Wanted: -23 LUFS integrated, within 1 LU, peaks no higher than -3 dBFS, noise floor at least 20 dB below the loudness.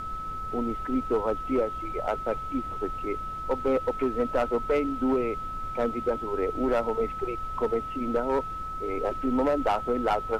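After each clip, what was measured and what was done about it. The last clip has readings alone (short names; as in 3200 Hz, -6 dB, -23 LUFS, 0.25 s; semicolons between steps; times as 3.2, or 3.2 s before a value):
steady tone 1300 Hz; tone level -33 dBFS; noise floor -35 dBFS; noise floor target -49 dBFS; loudness -28.5 LUFS; peak -15.5 dBFS; loudness target -23.0 LUFS
-> notch 1300 Hz, Q 30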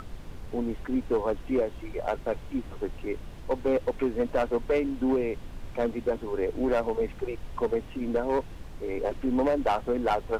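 steady tone none; noise floor -43 dBFS; noise floor target -50 dBFS
-> noise print and reduce 7 dB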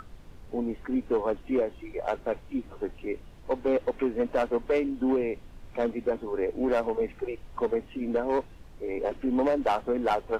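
noise floor -49 dBFS; noise floor target -50 dBFS
-> noise print and reduce 6 dB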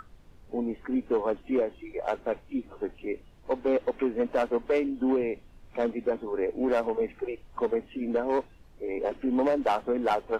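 noise floor -54 dBFS; loudness -29.5 LUFS; peak -17.5 dBFS; loudness target -23.0 LUFS
-> gain +6.5 dB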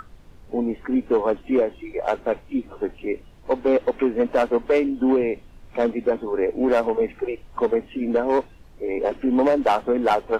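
loudness -23.0 LUFS; peak -11.0 dBFS; noise floor -47 dBFS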